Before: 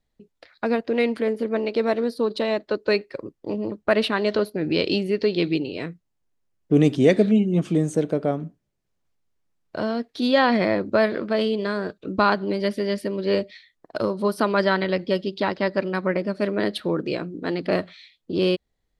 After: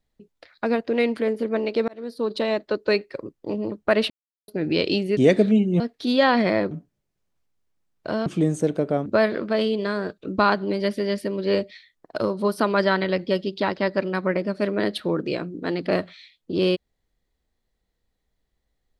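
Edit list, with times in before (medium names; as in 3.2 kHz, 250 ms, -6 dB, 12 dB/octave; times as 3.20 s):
1.88–2.35 s: fade in
4.10–4.48 s: mute
5.17–6.97 s: delete
7.60–8.40 s: swap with 9.95–10.86 s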